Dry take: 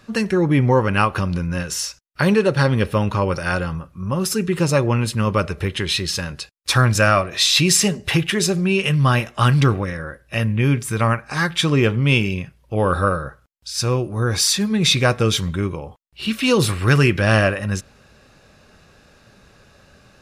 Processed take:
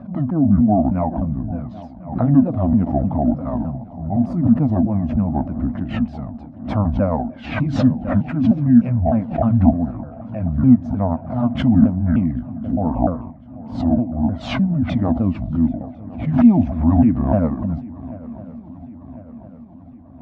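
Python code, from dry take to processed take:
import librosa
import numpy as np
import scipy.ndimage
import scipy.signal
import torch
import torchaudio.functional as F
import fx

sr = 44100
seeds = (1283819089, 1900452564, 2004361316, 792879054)

p1 = fx.pitch_ramps(x, sr, semitones=-10.0, every_ms=304)
p2 = fx.double_bandpass(p1, sr, hz=400.0, octaves=1.4)
p3 = fx.tilt_eq(p2, sr, slope=-4.5)
p4 = p3 + fx.echo_swing(p3, sr, ms=1051, ratio=3, feedback_pct=55, wet_db=-19.0, dry=0)
p5 = fx.pre_swell(p4, sr, db_per_s=100.0)
y = p5 * 10.0 ** (5.0 / 20.0)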